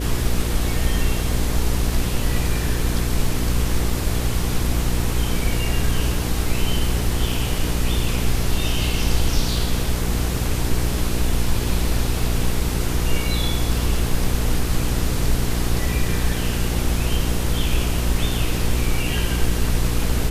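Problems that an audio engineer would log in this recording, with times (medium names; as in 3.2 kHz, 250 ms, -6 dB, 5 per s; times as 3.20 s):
hum 60 Hz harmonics 8 -24 dBFS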